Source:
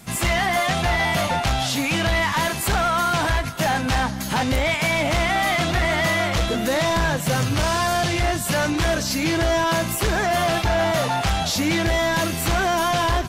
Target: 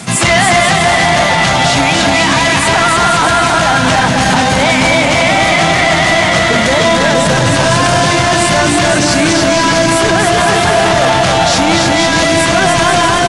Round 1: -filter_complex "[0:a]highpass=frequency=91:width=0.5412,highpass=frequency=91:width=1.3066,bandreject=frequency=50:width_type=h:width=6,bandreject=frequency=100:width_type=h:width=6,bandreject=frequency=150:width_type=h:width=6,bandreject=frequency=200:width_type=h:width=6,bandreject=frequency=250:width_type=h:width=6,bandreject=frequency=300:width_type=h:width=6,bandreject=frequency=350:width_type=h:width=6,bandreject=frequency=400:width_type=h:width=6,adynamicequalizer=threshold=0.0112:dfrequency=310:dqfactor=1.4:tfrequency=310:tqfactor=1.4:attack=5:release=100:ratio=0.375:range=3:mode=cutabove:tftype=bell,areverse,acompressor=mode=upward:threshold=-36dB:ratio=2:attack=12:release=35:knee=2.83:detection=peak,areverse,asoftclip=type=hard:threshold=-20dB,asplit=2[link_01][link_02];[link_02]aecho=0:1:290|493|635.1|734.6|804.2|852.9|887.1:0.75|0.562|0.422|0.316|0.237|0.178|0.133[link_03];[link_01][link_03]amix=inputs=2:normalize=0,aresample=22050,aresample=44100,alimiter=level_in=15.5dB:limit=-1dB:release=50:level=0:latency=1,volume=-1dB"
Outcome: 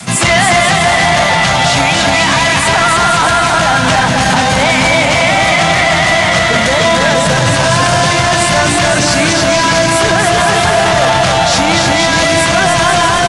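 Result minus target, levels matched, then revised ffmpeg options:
250 Hz band −2.5 dB
-filter_complex "[0:a]highpass=frequency=91:width=0.5412,highpass=frequency=91:width=1.3066,bandreject=frequency=50:width_type=h:width=6,bandreject=frequency=100:width_type=h:width=6,bandreject=frequency=150:width_type=h:width=6,bandreject=frequency=200:width_type=h:width=6,bandreject=frequency=250:width_type=h:width=6,bandreject=frequency=300:width_type=h:width=6,bandreject=frequency=350:width_type=h:width=6,bandreject=frequency=400:width_type=h:width=6,areverse,acompressor=mode=upward:threshold=-36dB:ratio=2:attack=12:release=35:knee=2.83:detection=peak,areverse,asoftclip=type=hard:threshold=-20dB,asplit=2[link_01][link_02];[link_02]aecho=0:1:290|493|635.1|734.6|804.2|852.9|887.1:0.75|0.562|0.422|0.316|0.237|0.178|0.133[link_03];[link_01][link_03]amix=inputs=2:normalize=0,aresample=22050,aresample=44100,alimiter=level_in=15.5dB:limit=-1dB:release=50:level=0:latency=1,volume=-1dB"

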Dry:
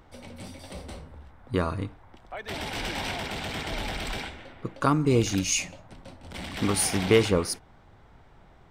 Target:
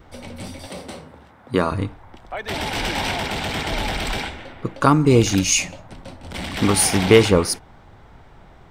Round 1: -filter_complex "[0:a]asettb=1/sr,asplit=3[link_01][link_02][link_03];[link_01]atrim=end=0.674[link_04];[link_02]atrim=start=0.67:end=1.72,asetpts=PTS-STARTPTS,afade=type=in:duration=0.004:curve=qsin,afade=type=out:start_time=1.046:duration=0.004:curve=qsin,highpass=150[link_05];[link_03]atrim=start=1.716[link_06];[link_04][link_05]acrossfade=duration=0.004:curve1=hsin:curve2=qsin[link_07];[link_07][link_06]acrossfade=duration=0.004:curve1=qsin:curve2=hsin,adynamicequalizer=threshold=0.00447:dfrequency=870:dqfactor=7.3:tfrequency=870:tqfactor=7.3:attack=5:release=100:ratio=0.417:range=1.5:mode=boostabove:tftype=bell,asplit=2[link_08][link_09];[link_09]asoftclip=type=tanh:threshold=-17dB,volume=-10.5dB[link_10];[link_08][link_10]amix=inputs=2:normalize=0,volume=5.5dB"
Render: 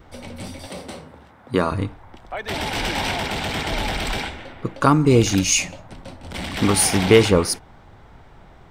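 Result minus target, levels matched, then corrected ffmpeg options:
soft clipping: distortion +16 dB
-filter_complex "[0:a]asettb=1/sr,asplit=3[link_01][link_02][link_03];[link_01]atrim=end=0.674[link_04];[link_02]atrim=start=0.67:end=1.72,asetpts=PTS-STARTPTS,afade=type=in:duration=0.004:curve=qsin,afade=type=out:start_time=1.046:duration=0.004:curve=qsin,highpass=150[link_05];[link_03]atrim=start=1.716[link_06];[link_04][link_05]acrossfade=duration=0.004:curve1=hsin:curve2=qsin[link_07];[link_07][link_06]acrossfade=duration=0.004:curve1=qsin:curve2=hsin,adynamicequalizer=threshold=0.00447:dfrequency=870:dqfactor=7.3:tfrequency=870:tqfactor=7.3:attack=5:release=100:ratio=0.417:range=1.5:mode=boostabove:tftype=bell,asplit=2[link_08][link_09];[link_09]asoftclip=type=tanh:threshold=-6dB,volume=-10.5dB[link_10];[link_08][link_10]amix=inputs=2:normalize=0,volume=5.5dB"

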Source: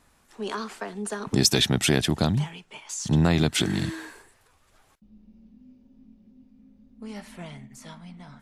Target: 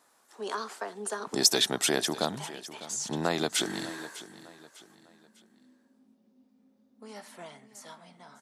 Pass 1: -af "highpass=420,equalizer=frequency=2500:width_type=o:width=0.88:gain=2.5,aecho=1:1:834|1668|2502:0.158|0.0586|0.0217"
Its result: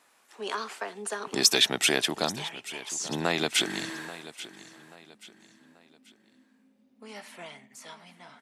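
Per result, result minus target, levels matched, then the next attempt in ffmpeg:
echo 233 ms late; 2,000 Hz band +3.0 dB
-af "highpass=420,equalizer=frequency=2500:width_type=o:width=0.88:gain=2.5,aecho=1:1:601|1202|1803:0.158|0.0586|0.0217"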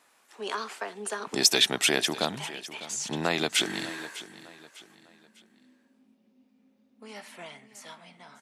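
2,000 Hz band +3.5 dB
-af "highpass=420,equalizer=frequency=2500:width_type=o:width=0.88:gain=-7,aecho=1:1:601|1202|1803:0.158|0.0586|0.0217"

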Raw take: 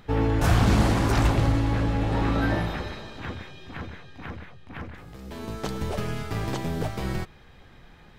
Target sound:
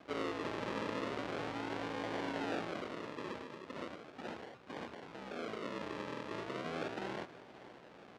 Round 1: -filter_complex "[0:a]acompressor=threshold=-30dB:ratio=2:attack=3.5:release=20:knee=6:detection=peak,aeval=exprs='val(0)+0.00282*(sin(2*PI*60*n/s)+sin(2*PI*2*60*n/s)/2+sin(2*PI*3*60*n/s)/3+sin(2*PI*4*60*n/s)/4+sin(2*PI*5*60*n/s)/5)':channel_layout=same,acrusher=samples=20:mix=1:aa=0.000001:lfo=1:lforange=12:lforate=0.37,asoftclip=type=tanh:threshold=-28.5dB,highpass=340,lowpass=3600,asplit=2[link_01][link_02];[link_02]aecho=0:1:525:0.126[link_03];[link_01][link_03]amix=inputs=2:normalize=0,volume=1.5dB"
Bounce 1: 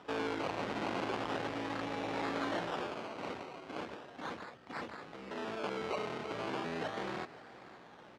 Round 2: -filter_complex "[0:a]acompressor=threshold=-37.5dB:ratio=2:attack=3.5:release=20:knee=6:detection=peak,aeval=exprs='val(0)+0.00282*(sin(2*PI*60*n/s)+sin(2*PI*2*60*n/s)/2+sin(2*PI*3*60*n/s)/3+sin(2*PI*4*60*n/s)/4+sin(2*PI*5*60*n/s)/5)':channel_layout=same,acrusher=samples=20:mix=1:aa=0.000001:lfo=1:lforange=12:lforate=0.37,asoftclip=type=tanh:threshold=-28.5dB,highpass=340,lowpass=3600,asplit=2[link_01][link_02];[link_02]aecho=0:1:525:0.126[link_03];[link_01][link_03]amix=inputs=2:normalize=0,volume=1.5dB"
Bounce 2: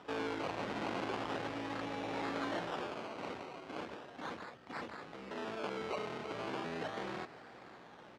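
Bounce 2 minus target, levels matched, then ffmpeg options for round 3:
sample-and-hold swept by an LFO: distortion −5 dB
-filter_complex "[0:a]acompressor=threshold=-37.5dB:ratio=2:attack=3.5:release=20:knee=6:detection=peak,aeval=exprs='val(0)+0.00282*(sin(2*PI*60*n/s)+sin(2*PI*2*60*n/s)/2+sin(2*PI*3*60*n/s)/3+sin(2*PI*4*60*n/s)/4+sin(2*PI*5*60*n/s)/5)':channel_layout=same,acrusher=samples=47:mix=1:aa=0.000001:lfo=1:lforange=28.2:lforate=0.37,asoftclip=type=tanh:threshold=-28.5dB,highpass=340,lowpass=3600,asplit=2[link_01][link_02];[link_02]aecho=0:1:525:0.126[link_03];[link_01][link_03]amix=inputs=2:normalize=0,volume=1.5dB"

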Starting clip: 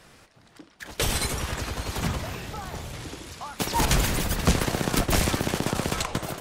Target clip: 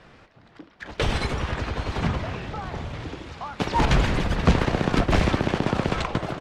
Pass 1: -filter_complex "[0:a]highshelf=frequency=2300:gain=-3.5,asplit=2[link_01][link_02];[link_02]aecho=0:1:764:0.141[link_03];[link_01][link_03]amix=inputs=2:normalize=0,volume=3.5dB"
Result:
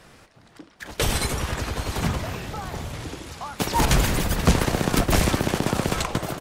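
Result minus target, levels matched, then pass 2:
4,000 Hz band +2.5 dB
-filter_complex "[0:a]lowpass=3600,highshelf=frequency=2300:gain=-3.5,asplit=2[link_01][link_02];[link_02]aecho=0:1:764:0.141[link_03];[link_01][link_03]amix=inputs=2:normalize=0,volume=3.5dB"

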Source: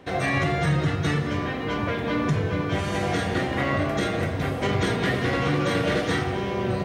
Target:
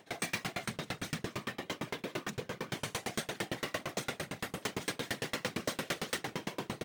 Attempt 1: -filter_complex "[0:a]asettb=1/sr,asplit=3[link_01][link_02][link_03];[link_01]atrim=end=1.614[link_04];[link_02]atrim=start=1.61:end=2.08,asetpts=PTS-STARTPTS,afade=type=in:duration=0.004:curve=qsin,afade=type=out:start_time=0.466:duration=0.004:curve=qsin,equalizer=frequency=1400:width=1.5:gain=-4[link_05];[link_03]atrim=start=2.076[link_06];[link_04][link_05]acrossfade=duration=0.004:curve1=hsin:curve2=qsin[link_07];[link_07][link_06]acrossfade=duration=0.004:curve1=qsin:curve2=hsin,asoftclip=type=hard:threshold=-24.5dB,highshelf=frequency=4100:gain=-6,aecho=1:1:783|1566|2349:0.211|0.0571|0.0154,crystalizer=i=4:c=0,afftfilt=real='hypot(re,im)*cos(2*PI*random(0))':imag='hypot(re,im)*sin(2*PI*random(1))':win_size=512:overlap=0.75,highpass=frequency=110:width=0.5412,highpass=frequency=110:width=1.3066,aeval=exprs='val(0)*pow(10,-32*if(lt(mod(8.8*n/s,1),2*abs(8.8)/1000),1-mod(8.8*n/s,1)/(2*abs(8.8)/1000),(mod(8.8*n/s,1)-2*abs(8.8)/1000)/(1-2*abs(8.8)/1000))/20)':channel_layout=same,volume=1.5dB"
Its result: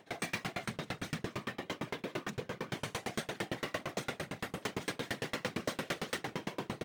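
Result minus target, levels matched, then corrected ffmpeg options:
8,000 Hz band −3.5 dB
-filter_complex "[0:a]asettb=1/sr,asplit=3[link_01][link_02][link_03];[link_01]atrim=end=1.614[link_04];[link_02]atrim=start=1.61:end=2.08,asetpts=PTS-STARTPTS,afade=type=in:duration=0.004:curve=qsin,afade=type=out:start_time=0.466:duration=0.004:curve=qsin,equalizer=frequency=1400:width=1.5:gain=-4[link_05];[link_03]atrim=start=2.076[link_06];[link_04][link_05]acrossfade=duration=0.004:curve1=hsin:curve2=qsin[link_07];[link_07][link_06]acrossfade=duration=0.004:curve1=qsin:curve2=hsin,asoftclip=type=hard:threshold=-24.5dB,aecho=1:1:783|1566|2349:0.211|0.0571|0.0154,crystalizer=i=4:c=0,afftfilt=real='hypot(re,im)*cos(2*PI*random(0))':imag='hypot(re,im)*sin(2*PI*random(1))':win_size=512:overlap=0.75,highpass=frequency=110:width=0.5412,highpass=frequency=110:width=1.3066,aeval=exprs='val(0)*pow(10,-32*if(lt(mod(8.8*n/s,1),2*abs(8.8)/1000),1-mod(8.8*n/s,1)/(2*abs(8.8)/1000),(mod(8.8*n/s,1)-2*abs(8.8)/1000)/(1-2*abs(8.8)/1000))/20)':channel_layout=same,volume=1.5dB"

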